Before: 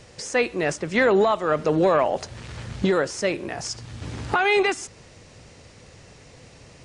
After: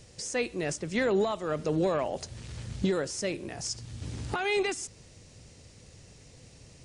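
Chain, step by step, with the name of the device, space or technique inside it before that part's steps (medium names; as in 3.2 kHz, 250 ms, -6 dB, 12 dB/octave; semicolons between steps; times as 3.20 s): smiley-face EQ (bass shelf 160 Hz +4 dB; peaking EQ 1.2 kHz -6.5 dB 2.3 oct; treble shelf 5.8 kHz +7.5 dB); trim -6 dB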